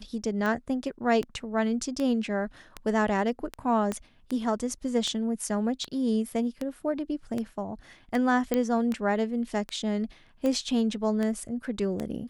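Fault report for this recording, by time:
tick 78 rpm -18 dBFS
3.92 pop -17 dBFS
8.54 pop -12 dBFS

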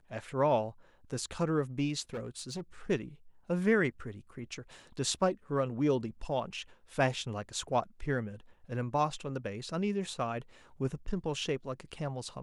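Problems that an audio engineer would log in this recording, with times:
2.14–2.61 clipped -34 dBFS

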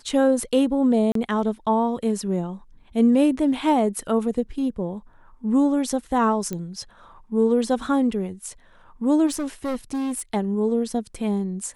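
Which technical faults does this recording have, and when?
1.12–1.15 gap 33 ms
6.53 pop -16 dBFS
9.26–10.21 clipped -23 dBFS

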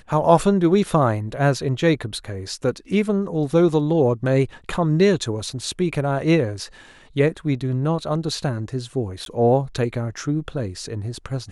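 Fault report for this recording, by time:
9.25–9.26 gap 12 ms

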